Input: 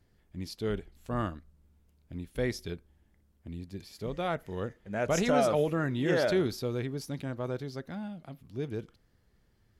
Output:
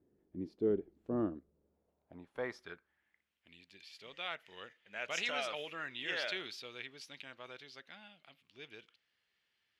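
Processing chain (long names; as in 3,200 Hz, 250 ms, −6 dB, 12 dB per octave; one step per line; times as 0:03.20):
band-pass filter sweep 340 Hz → 2,800 Hz, 0:01.32–0:03.41
level +5 dB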